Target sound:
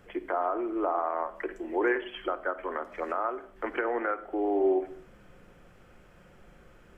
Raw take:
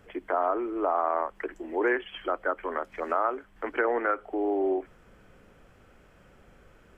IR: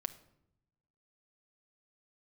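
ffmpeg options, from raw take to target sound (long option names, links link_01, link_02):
-filter_complex "[0:a]alimiter=limit=-18.5dB:level=0:latency=1:release=392[link_01];[1:a]atrim=start_sample=2205,afade=type=out:start_time=0.31:duration=0.01,atrim=end_sample=14112[link_02];[link_01][link_02]afir=irnorm=-1:irlink=0,volume=1.5dB"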